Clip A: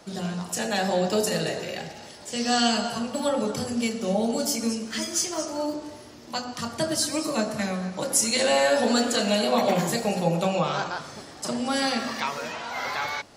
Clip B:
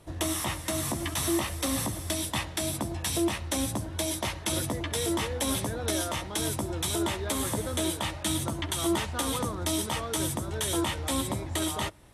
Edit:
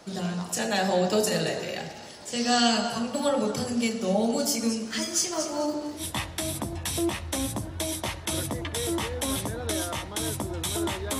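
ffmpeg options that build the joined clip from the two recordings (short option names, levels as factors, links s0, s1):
-filter_complex "[0:a]asettb=1/sr,asplit=3[s0][s1][s2];[s0]atrim=end=5.194[s3];[s1]atrim=start=5.19:end=6.04,asetpts=PTS-STARTPTS,afade=t=in:d=0.004:c=qsin,afade=t=out:st=0.846:d=0.004:c=qsin,aecho=1:1:212:0.335,atrim=end_sample=37485[s4];[s2]atrim=start=6.036[s5];[s3][s4]acrossfade=d=0.004:c1=hsin:c2=qsin[s6];[s6][s5]acrossfade=d=0.004:c1=qsin:c2=hsin,apad=whole_dur=11.19,atrim=end=11.19,atrim=end=6.04,asetpts=PTS-STARTPTS[s7];[1:a]atrim=start=2.15:end=7.38,asetpts=PTS-STARTPTS[s8];[s7][s8]acrossfade=d=0.08:c1=tri:c2=tri"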